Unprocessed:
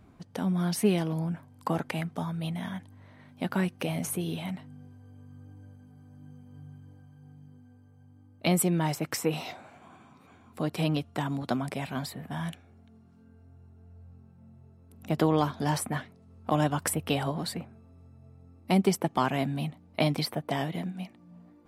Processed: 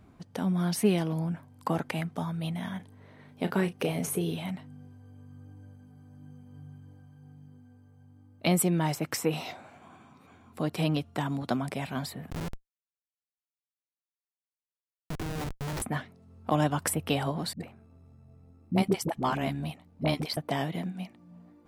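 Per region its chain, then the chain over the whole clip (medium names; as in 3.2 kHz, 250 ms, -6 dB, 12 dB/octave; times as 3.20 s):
2.76–4.31 s: peaking EQ 430 Hz +10 dB 0.33 oct + doubling 35 ms -12 dB
12.30–15.82 s: high-pass 130 Hz + Schmitt trigger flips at -29 dBFS
17.53–20.37 s: phase dispersion highs, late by 74 ms, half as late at 350 Hz + AM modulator 73 Hz, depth 30%
whole clip: none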